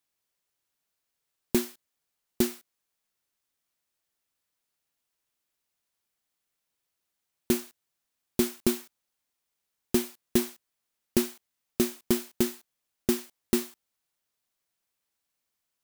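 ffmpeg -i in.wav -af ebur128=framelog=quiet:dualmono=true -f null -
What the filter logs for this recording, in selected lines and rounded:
Integrated loudness:
  I:         -27.1 LUFS
  Threshold: -37.9 LUFS
Loudness range:
  LRA:         7.8 LU
  Threshold: -50.4 LUFS
  LRA low:   -35.7 LUFS
  LRA high:  -27.8 LUFS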